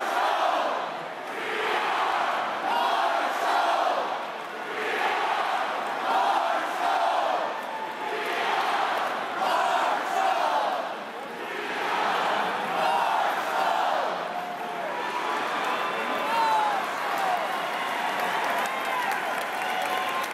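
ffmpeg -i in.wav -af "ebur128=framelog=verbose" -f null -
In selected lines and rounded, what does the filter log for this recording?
Integrated loudness:
  I:         -26.3 LUFS
  Threshold: -36.3 LUFS
Loudness range:
  LRA:         1.1 LU
  Threshold: -46.2 LUFS
  LRA low:   -26.9 LUFS
  LRA high:  -25.7 LUFS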